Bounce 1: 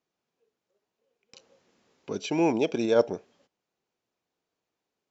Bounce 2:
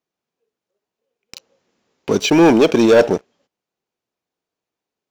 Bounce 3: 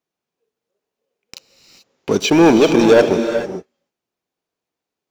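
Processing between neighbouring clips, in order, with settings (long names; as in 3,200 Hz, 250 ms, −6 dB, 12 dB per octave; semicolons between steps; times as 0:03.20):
leveller curve on the samples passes 3; level +5.5 dB
reverb whose tail is shaped and stops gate 460 ms rising, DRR 7 dB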